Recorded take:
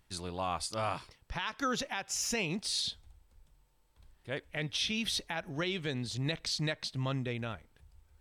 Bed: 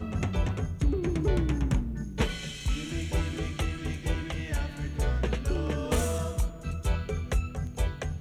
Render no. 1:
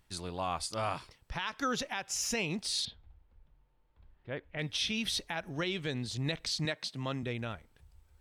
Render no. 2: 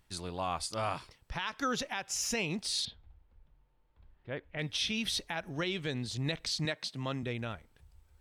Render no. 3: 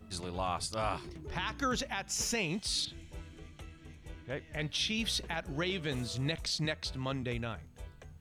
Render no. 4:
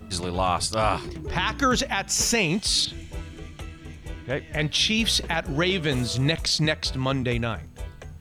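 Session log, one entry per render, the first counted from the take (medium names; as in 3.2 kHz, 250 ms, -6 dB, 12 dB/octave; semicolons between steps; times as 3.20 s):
2.85–4.59 s: distance through air 360 m; 6.65–7.23 s: high-pass 160 Hz
no audible change
add bed -18.5 dB
trim +11 dB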